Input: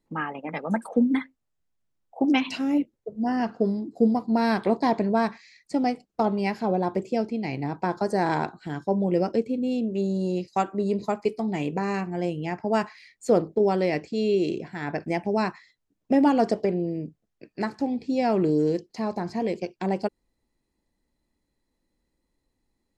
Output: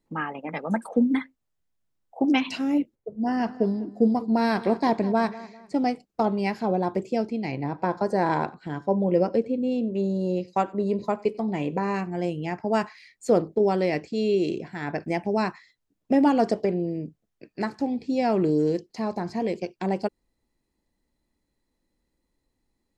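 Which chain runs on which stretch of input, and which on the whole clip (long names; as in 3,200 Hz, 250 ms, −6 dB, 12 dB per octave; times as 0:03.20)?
0:02.95–0:05.76: repeating echo 199 ms, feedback 37%, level −17 dB + one half of a high-frequency compander decoder only
0:07.51–0:11.96: high-shelf EQ 5,500 Hz −10 dB + hollow resonant body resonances 540/1,000 Hz, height 6 dB + single-tap delay 92 ms −23 dB
whole clip: no processing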